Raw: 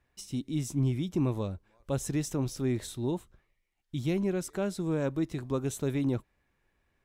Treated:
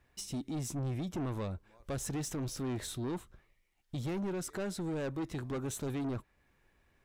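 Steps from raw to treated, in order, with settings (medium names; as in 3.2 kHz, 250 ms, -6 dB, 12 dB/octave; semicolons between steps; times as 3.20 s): dynamic bell 1.4 kHz, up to +4 dB, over -53 dBFS, Q 0.95; in parallel at 0 dB: compression, threshold -42 dBFS, peak gain reduction 17 dB; on the sum: saturation -30.5 dBFS, distortion -8 dB; trim -2 dB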